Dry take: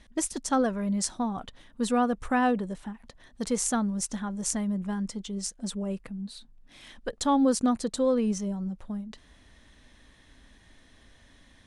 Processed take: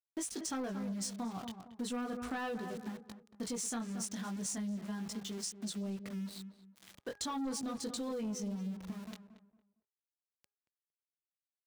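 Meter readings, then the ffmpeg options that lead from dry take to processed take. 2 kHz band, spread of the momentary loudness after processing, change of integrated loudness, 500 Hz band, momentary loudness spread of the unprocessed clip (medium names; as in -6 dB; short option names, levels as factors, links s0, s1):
-10.0 dB, 10 LU, -11.0 dB, -13.5 dB, 14 LU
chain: -filter_complex "[0:a]flanger=delay=18:depth=4:speed=0.38,equalizer=f=900:w=1.8:g=-3,aeval=exprs='val(0)*gte(abs(val(0)),0.00501)':c=same,asplit=2[s0][s1];[s1]adelay=229,lowpass=f=1500:p=1,volume=0.251,asplit=2[s2][s3];[s3]adelay=229,lowpass=f=1500:p=1,volume=0.28,asplit=2[s4][s5];[s5]adelay=229,lowpass=f=1500:p=1,volume=0.28[s6];[s0][s2][s4][s6]amix=inputs=4:normalize=0,adynamicequalizer=threshold=0.00316:dfrequency=4900:dqfactor=0.79:tfrequency=4900:tqfactor=0.79:attack=5:release=100:ratio=0.375:range=2.5:mode=boostabove:tftype=bell,highpass=66,bandreject=f=560:w=12,bandreject=f=411.3:t=h:w=4,bandreject=f=822.6:t=h:w=4,bandreject=f=1233.9:t=h:w=4,bandreject=f=1645.2:t=h:w=4,asoftclip=type=tanh:threshold=0.0501,acompressor=threshold=0.0141:ratio=4"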